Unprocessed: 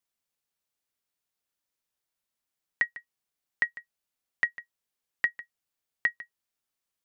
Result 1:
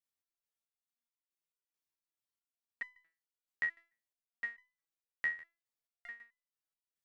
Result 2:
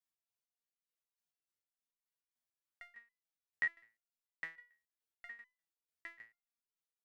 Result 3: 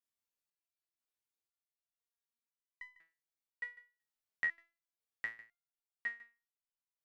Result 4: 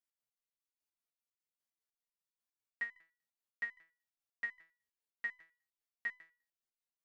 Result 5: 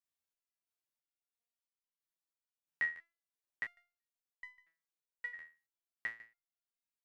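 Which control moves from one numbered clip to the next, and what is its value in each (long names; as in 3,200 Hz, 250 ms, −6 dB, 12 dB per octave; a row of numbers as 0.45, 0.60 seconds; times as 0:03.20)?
step-sequenced resonator, speed: 4.6, 6.8, 2, 10, 3 Hertz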